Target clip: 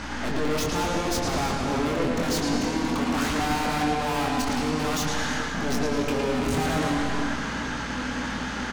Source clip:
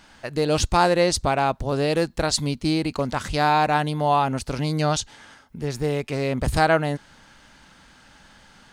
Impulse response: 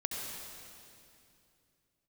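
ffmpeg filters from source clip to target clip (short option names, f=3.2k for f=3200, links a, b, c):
-filter_complex "[0:a]highshelf=f=3.2k:g=-8,asplit=2[a][b];[b]highpass=f=720:p=1,volume=34dB,asoftclip=type=tanh:threshold=-6dB[c];[a][c]amix=inputs=2:normalize=0,lowpass=f=1.2k:p=1,volume=-6dB,equalizer=f=250:t=o:w=0.67:g=11,equalizer=f=630:t=o:w=0.67:g=-6,equalizer=f=6.3k:t=o:w=0.67:g=11,aeval=exprs='(tanh(28.2*val(0)+0.75)-tanh(0.75))/28.2':c=same,asplit=2[d][e];[e]adelay=24,volume=-5.5dB[f];[d][f]amix=inputs=2:normalize=0,asplit=2[g][h];[1:a]atrim=start_sample=2205,lowpass=8.1k,adelay=111[i];[h][i]afir=irnorm=-1:irlink=0,volume=-2.5dB[j];[g][j]amix=inputs=2:normalize=0,aeval=exprs='val(0)+0.0112*(sin(2*PI*60*n/s)+sin(2*PI*2*60*n/s)/2+sin(2*PI*3*60*n/s)/3+sin(2*PI*4*60*n/s)/4+sin(2*PI*5*60*n/s)/5)':c=same"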